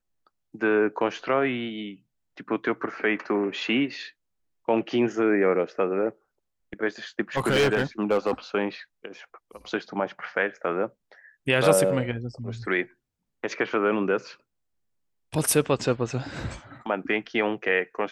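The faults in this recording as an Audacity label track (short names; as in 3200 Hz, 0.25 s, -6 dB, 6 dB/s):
7.370000	8.320000	clipped -17 dBFS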